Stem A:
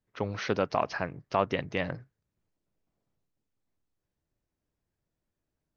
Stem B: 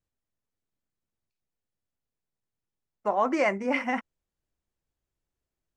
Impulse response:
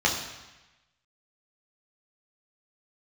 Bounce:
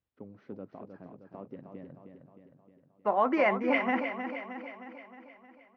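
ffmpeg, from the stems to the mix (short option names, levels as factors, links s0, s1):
-filter_complex "[0:a]aeval=exprs='if(lt(val(0),0),0.708*val(0),val(0))':c=same,agate=range=0.0224:threshold=0.00562:ratio=3:detection=peak,bandpass=f=250:t=q:w=1.8:csg=0,volume=0.473,asplit=2[s0][s1];[s1]volume=0.473[s2];[1:a]lowpass=f=3700:w=0.5412,lowpass=f=3700:w=1.3066,volume=0.891,asplit=2[s3][s4];[s4]volume=0.376[s5];[s2][s5]amix=inputs=2:normalize=0,aecho=0:1:311|622|933|1244|1555|1866|2177|2488|2799:1|0.57|0.325|0.185|0.106|0.0602|0.0343|0.0195|0.0111[s6];[s0][s3][s6]amix=inputs=3:normalize=0,highpass=48"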